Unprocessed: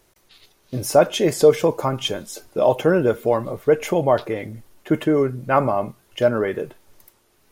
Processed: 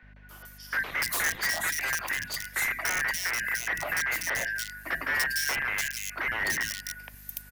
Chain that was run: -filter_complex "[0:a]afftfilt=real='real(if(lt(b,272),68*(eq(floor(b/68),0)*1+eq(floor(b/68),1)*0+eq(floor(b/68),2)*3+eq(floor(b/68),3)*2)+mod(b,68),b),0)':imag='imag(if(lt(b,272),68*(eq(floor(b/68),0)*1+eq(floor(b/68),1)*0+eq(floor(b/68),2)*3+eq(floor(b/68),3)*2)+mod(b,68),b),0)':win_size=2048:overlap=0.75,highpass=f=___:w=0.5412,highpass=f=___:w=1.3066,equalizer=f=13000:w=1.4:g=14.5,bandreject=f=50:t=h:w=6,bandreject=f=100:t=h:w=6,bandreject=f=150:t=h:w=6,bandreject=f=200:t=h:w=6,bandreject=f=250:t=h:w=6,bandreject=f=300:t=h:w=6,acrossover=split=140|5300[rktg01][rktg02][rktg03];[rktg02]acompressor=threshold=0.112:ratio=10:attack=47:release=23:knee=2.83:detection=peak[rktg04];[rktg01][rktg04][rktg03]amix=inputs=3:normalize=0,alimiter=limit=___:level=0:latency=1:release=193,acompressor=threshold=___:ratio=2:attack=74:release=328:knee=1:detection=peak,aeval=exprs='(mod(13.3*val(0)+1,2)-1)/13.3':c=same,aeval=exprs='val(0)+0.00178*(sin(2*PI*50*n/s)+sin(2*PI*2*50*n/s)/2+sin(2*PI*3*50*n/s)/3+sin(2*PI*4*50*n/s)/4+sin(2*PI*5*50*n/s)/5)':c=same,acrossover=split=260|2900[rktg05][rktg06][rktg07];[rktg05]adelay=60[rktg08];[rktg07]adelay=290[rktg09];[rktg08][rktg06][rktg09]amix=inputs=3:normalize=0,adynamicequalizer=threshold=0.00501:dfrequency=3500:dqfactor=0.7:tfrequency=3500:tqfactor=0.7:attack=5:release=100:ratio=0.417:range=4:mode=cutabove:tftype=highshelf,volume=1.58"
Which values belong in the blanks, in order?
110, 110, 0.211, 0.0251